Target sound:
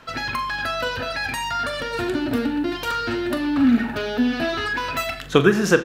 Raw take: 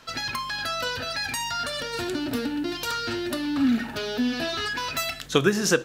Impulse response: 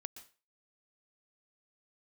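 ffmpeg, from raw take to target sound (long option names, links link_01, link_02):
-filter_complex "[0:a]asplit=2[link_01][link_02];[link_02]adelay=42,volume=-12.5dB[link_03];[link_01][link_03]amix=inputs=2:normalize=0,asplit=2[link_04][link_05];[1:a]atrim=start_sample=2205,asetrate=61740,aresample=44100,lowpass=3100[link_06];[link_05][link_06]afir=irnorm=-1:irlink=0,volume=11dB[link_07];[link_04][link_07]amix=inputs=2:normalize=0,volume=-2.5dB"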